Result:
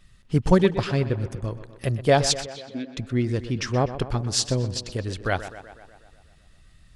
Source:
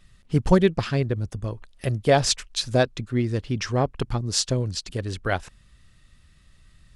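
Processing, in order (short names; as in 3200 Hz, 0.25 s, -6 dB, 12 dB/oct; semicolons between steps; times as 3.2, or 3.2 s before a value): 2.46–2.97 vowel filter i; on a send: tape echo 0.124 s, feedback 67%, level -12 dB, low-pass 3900 Hz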